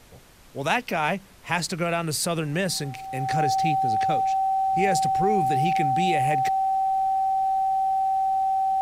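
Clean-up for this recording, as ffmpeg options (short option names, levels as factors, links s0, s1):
-af "bandreject=f=770:w=30,agate=range=0.0891:threshold=0.02"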